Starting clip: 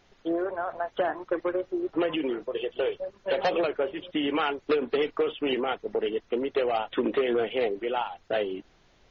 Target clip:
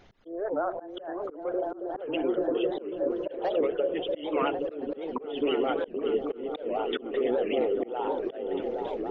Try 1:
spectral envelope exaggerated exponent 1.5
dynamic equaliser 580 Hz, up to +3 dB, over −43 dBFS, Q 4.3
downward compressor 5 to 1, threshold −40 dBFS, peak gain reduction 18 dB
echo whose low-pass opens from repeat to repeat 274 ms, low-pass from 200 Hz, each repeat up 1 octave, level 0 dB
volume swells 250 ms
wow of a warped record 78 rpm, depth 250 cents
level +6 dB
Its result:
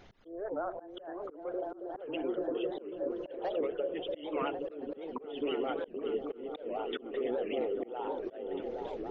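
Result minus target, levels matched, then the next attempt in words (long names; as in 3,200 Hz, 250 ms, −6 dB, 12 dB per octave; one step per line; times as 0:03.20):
downward compressor: peak gain reduction +7 dB
spectral envelope exaggerated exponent 1.5
dynamic equaliser 580 Hz, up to +3 dB, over −43 dBFS, Q 4.3
downward compressor 5 to 1, threshold −31.5 dBFS, peak gain reduction 11 dB
echo whose low-pass opens from repeat to repeat 274 ms, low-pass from 200 Hz, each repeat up 1 octave, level 0 dB
volume swells 250 ms
wow of a warped record 78 rpm, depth 250 cents
level +6 dB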